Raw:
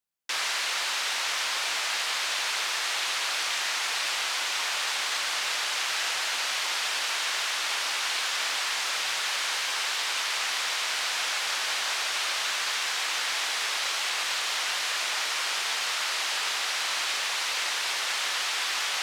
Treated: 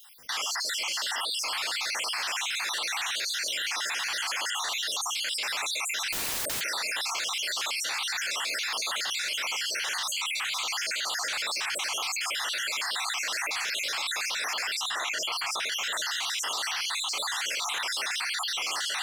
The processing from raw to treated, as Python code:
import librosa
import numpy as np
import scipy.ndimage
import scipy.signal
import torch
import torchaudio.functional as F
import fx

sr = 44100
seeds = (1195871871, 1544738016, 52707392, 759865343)

y = fx.spec_dropout(x, sr, seeds[0], share_pct=57)
y = fx.overflow_wrap(y, sr, gain_db=32.5, at=(6.12, 6.61))
y = fx.cheby1_bandstop(y, sr, low_hz=160.0, high_hz=910.0, order=2, at=(9.99, 10.63))
y = 10.0 ** (-23.0 / 20.0) * np.tanh(y / 10.0 ** (-23.0 / 20.0))
y = fx.high_shelf(y, sr, hz=4300.0, db=-8.5, at=(14.75, 15.72))
y = fx.env_flatten(y, sr, amount_pct=100)